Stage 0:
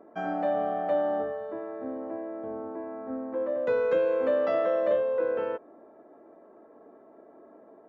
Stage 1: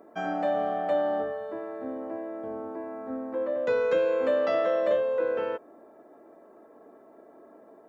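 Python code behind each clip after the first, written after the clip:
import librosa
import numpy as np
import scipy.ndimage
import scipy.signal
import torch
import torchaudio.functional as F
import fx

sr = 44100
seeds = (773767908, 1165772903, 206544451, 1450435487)

y = fx.high_shelf(x, sr, hz=3300.0, db=12.0)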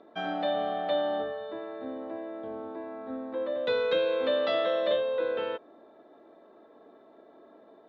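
y = fx.lowpass_res(x, sr, hz=3700.0, q=8.6)
y = y * 10.0 ** (-2.5 / 20.0)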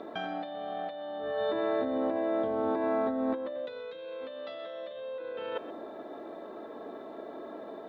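y = fx.over_compress(x, sr, threshold_db=-40.0, ratio=-1.0)
y = y + 10.0 ** (-15.0 / 20.0) * np.pad(y, (int(126 * sr / 1000.0), 0))[:len(y)]
y = y * 10.0 ** (4.5 / 20.0)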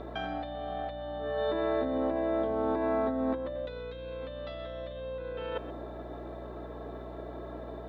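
y = fx.add_hum(x, sr, base_hz=60, snr_db=12)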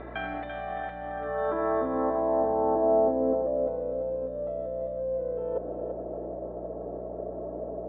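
y = fx.filter_sweep_lowpass(x, sr, from_hz=2100.0, to_hz=590.0, start_s=0.51, end_s=3.18, q=2.8)
y = fx.echo_feedback(y, sr, ms=339, feedback_pct=48, wet_db=-7.5)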